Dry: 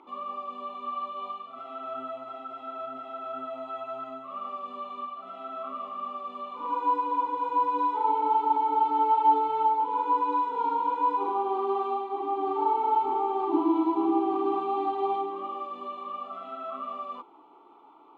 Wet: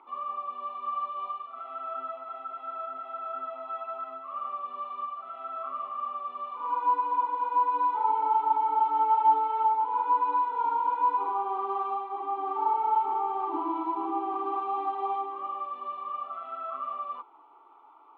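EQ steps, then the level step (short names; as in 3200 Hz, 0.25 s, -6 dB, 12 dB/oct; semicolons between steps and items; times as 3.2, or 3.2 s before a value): band-pass 1300 Hz, Q 1.1; +2.0 dB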